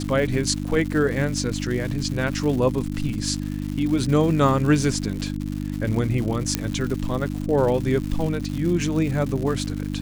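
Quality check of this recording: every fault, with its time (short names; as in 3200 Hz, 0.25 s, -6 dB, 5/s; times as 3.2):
crackle 230/s -29 dBFS
hum 50 Hz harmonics 6 -28 dBFS
6.55 pop -5 dBFS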